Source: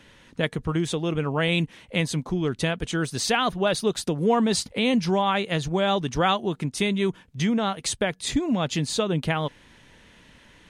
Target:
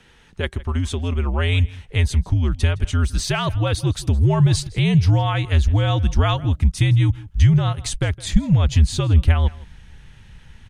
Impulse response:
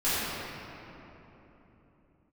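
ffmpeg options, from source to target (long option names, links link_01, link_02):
-filter_complex "[0:a]afreqshift=-77,asplit=2[link_01][link_02];[link_02]adelay=163.3,volume=-20dB,highshelf=frequency=4000:gain=-3.67[link_03];[link_01][link_03]amix=inputs=2:normalize=0,asubboost=boost=6.5:cutoff=140"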